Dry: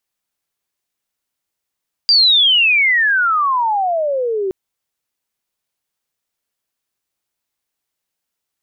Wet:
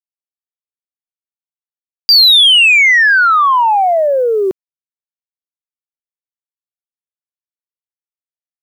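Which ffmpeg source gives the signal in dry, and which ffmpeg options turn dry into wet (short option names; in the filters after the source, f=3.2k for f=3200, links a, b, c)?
-f lavfi -i "aevalsrc='pow(10,(-7.5-9*t/2.42)/20)*sin(2*PI*4800*2.42/log(370/4800)*(exp(log(370/4800)*t/2.42)-1))':d=2.42:s=44100"
-af "highpass=f=89:p=1,acontrast=68,aeval=exprs='val(0)*gte(abs(val(0)),0.0188)':c=same"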